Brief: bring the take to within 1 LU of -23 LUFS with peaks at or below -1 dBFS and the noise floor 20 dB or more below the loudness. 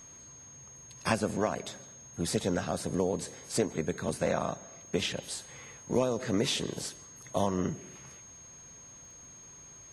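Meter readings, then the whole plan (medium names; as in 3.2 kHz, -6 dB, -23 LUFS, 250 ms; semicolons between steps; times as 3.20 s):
tick rate 20 per s; steady tone 6.5 kHz; tone level -49 dBFS; loudness -32.5 LUFS; peak level -12.0 dBFS; loudness target -23.0 LUFS
-> de-click; band-stop 6.5 kHz, Q 30; trim +9.5 dB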